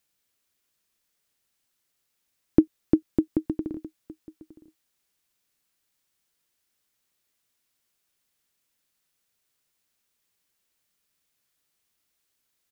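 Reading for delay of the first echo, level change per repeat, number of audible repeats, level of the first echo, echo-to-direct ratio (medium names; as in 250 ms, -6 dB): 913 ms, no regular repeats, 1, -20.5 dB, -20.5 dB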